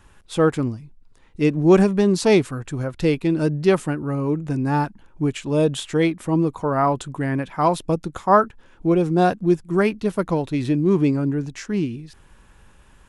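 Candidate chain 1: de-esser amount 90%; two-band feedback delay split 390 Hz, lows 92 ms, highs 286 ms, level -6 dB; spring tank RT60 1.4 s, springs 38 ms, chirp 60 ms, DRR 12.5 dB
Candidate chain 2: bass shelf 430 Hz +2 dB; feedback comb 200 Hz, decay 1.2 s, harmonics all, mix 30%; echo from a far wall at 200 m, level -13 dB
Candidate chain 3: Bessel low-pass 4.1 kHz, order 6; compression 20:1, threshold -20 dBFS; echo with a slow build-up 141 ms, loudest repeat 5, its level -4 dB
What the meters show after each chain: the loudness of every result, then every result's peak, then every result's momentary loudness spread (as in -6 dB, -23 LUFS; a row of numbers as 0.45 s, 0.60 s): -20.0 LUFS, -22.5 LUFS, -20.5 LUFS; -4.0 dBFS, -5.5 dBFS, -6.0 dBFS; 7 LU, 10 LU, 4 LU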